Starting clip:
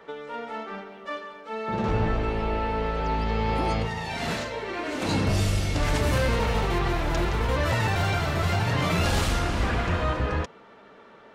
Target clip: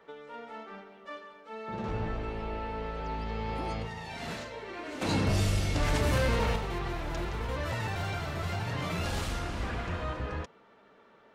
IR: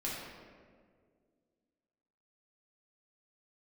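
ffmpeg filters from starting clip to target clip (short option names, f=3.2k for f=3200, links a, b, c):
-filter_complex "[0:a]asettb=1/sr,asplit=3[a][b][c];[a]atrim=end=5.014[d];[b]atrim=start=5.01:end=6.56,asetpts=PTS-STARTPTS,afade=t=in:d=0.004:c=qsin,afade=t=out:st=1.546:d=0.004:c=qsin,acontrast=46[e];[c]atrim=start=6.556[f];[d][e]acrossfade=d=0.004:c1=hsin:c2=qsin[g];[g][f]acrossfade=d=0.004:c1=qsin:c2=hsin,volume=-9dB"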